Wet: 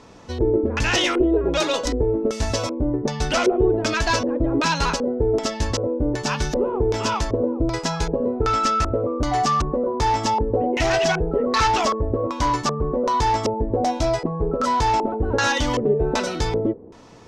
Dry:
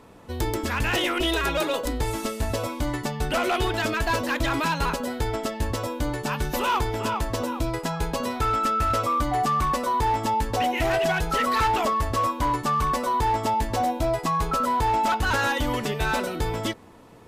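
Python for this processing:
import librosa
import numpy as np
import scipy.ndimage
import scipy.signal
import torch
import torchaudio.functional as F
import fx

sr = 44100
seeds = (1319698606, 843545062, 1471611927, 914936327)

y = fx.filter_lfo_lowpass(x, sr, shape='square', hz=1.3, low_hz=440.0, high_hz=5900.0, q=3.0)
y = F.gain(torch.from_numpy(y), 3.0).numpy()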